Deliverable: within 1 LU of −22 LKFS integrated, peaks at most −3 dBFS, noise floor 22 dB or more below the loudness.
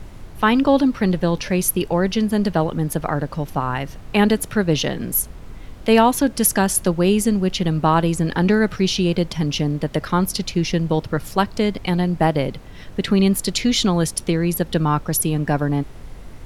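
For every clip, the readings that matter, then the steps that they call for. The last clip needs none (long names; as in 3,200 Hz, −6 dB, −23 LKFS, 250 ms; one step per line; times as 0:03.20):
background noise floor −38 dBFS; target noise floor −42 dBFS; integrated loudness −19.5 LKFS; sample peak −2.0 dBFS; target loudness −22.0 LKFS
→ noise reduction from a noise print 6 dB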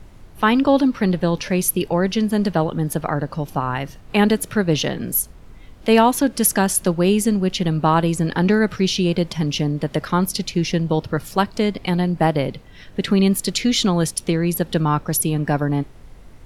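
background noise floor −43 dBFS; integrated loudness −19.5 LKFS; sample peak −2.0 dBFS; target loudness −22.0 LKFS
→ level −2.5 dB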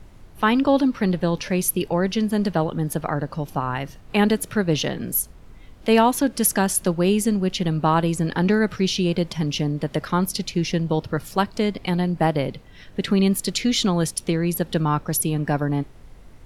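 integrated loudness −22.0 LKFS; sample peak −4.5 dBFS; background noise floor −46 dBFS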